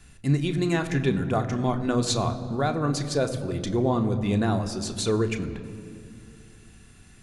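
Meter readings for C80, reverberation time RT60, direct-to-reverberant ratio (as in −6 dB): 13.0 dB, 2.5 s, 5.5 dB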